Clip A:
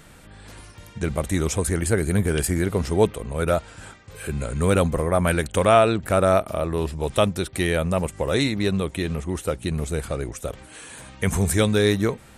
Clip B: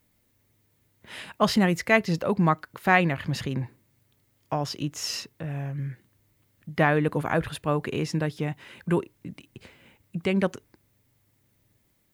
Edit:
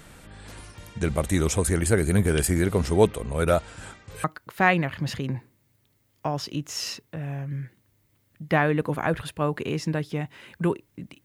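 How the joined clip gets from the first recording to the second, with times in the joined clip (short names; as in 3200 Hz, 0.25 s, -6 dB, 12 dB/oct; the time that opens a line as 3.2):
clip A
4.24 switch to clip B from 2.51 s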